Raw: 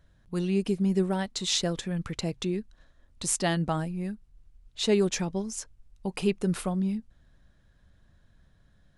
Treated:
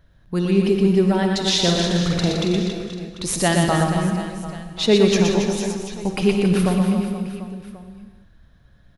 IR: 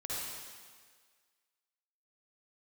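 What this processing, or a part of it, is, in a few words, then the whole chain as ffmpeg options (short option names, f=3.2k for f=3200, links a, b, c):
keyed gated reverb: -filter_complex "[0:a]equalizer=f=7.8k:t=o:w=0.58:g=-9.5,asettb=1/sr,asplit=3[a][b][c];[a]atrim=end=1.604[d];[b]atrim=start=1.6:end=2.46,asetpts=PTS-STARTPTS,afade=t=in:d=0.004:c=qsin,afade=t=out:st=0.856:d=0.004:c=qsin,asplit=2[e][f];[f]adelay=46,volume=-3.5dB[g];[e][g]amix=inputs=2:normalize=0,atrim=end_sample=37926[h];[c]atrim=start=2.456[i];[d][h]acrossfade=d=0.004:c1=hsin:c2=qsin[j];[j][i]acrossfade=d=0.004:c1=qsin:c2=hsin,asplit=3[k][l][m];[1:a]atrim=start_sample=2205[n];[l][n]afir=irnorm=-1:irlink=0[o];[m]apad=whole_len=395772[p];[o][p]sidechaingate=range=-33dB:threshold=-50dB:ratio=16:detection=peak,volume=-7dB[q];[k][q]amix=inputs=2:normalize=0,aecho=1:1:120|276|478.8|742.4|1085:0.631|0.398|0.251|0.158|0.1,volume=6dB"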